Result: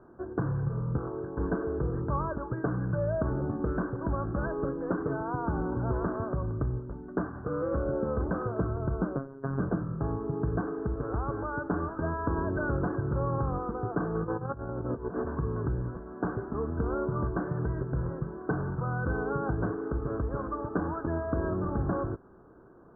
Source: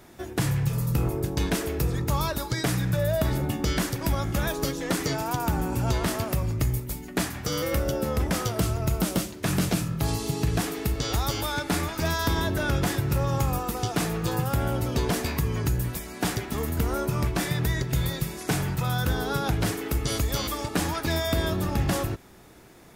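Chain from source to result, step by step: 0.98–1.38 tilt +3 dB/oct; 14.15–15.28 negative-ratio compressor -29 dBFS, ratio -0.5; rippled Chebyshev low-pass 1600 Hz, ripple 6 dB; 9.16–9.6 robotiser 136 Hz

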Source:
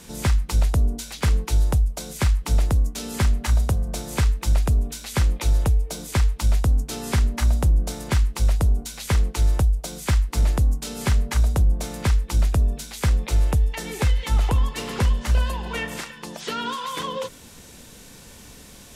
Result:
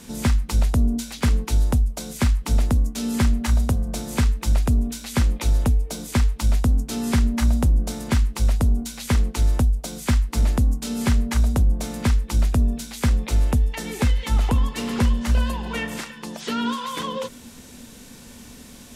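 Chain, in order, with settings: bell 240 Hz +13 dB 0.22 oct

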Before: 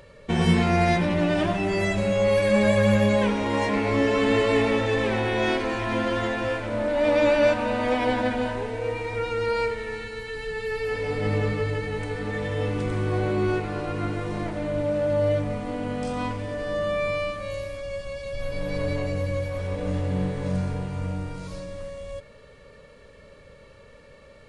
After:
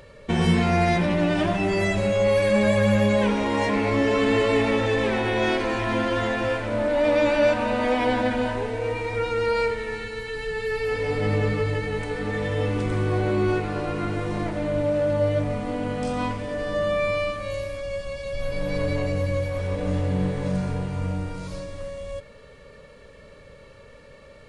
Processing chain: in parallel at -2 dB: limiter -17.5 dBFS, peak gain reduction 9 dB; on the sum: flange 0.23 Hz, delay 2.6 ms, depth 5.2 ms, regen -86%; gain +1.5 dB

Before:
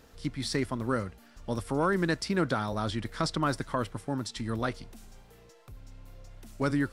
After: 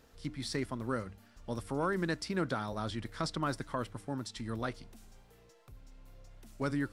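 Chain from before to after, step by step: de-hum 100.7 Hz, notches 3; gain -5.5 dB

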